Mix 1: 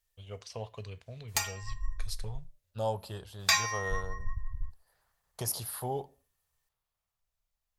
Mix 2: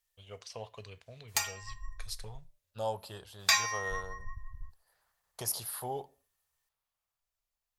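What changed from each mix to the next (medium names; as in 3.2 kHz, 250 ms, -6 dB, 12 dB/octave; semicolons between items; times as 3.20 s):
master: add bass shelf 340 Hz -8.5 dB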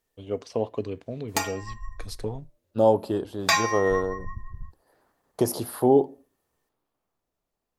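first voice: send -6.0 dB; master: remove amplifier tone stack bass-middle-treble 10-0-10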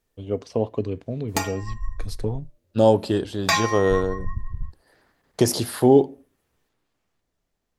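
second voice: add high-order bell 3.7 kHz +11 dB 2.8 oct; master: add bass shelf 340 Hz +8.5 dB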